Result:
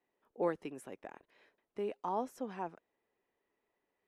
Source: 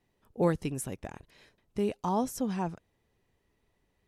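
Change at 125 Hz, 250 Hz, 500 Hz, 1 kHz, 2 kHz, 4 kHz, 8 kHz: -18.5, -11.5, -5.5, -4.5, -6.0, -11.5, -18.0 dB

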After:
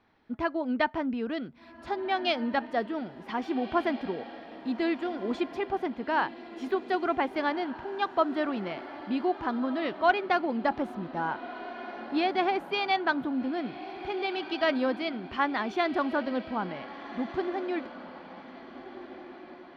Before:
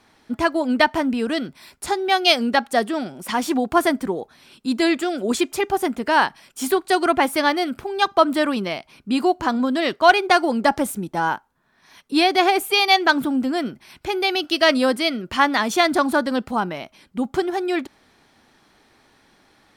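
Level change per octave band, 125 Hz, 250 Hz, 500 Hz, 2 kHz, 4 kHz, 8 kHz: -8.5 dB, -8.5 dB, -9.0 dB, -11.0 dB, -15.0 dB, under -25 dB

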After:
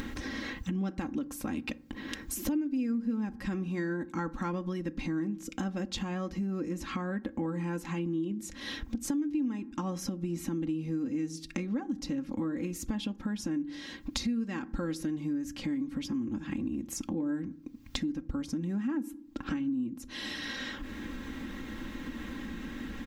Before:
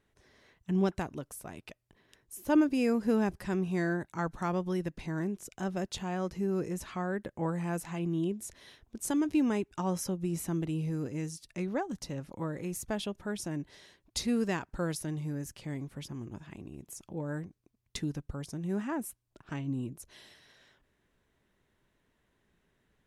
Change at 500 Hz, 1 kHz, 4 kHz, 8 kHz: -5.0, -3.5, +4.0, -0.5 dB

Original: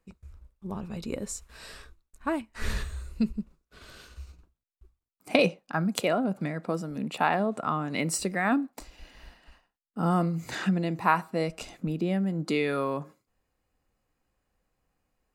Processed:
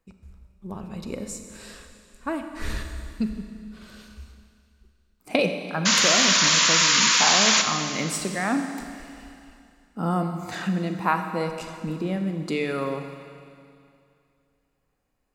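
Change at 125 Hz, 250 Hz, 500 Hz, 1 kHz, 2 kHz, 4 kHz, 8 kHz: +0.5, +1.0, +1.0, +3.0, +8.5, +18.0, +17.5 dB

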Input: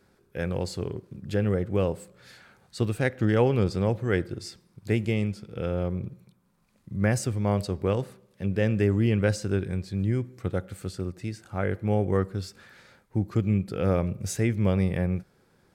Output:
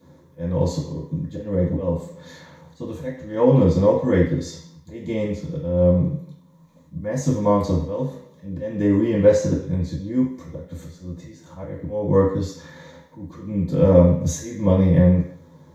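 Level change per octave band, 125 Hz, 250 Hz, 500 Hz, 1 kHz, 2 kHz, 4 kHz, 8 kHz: +4.5, +7.0, +8.0, +5.5, -3.5, -0.5, +3.5 dB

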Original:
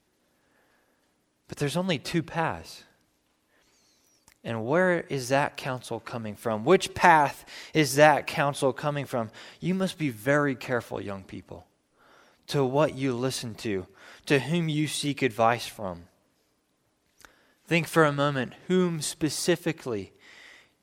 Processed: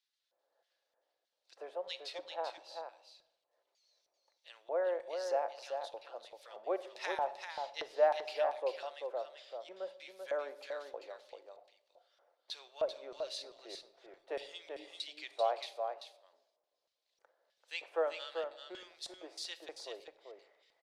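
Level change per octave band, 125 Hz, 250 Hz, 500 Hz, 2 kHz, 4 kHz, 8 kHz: under -40 dB, -28.5 dB, -10.0 dB, -18.5 dB, -10.5 dB, -19.5 dB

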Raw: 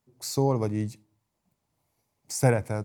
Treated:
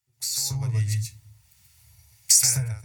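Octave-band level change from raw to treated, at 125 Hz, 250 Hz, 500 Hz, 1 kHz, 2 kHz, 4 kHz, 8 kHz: +2.0 dB, -10.5 dB, -21.5 dB, under -10 dB, -3.0 dB, +14.0 dB, +16.5 dB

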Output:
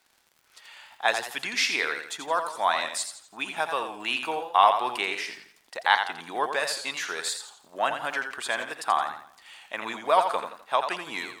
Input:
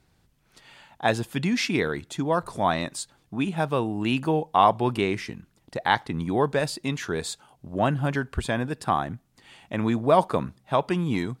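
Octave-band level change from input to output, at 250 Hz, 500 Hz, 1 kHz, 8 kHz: -17.0, -5.0, +0.5, +4.0 dB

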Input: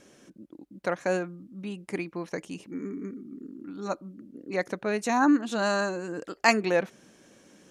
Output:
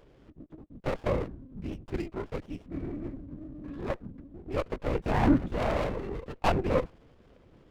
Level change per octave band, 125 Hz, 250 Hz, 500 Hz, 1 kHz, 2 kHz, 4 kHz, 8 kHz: +8.0 dB, -2.5 dB, -2.5 dB, -4.0 dB, -9.5 dB, -7.5 dB, under -10 dB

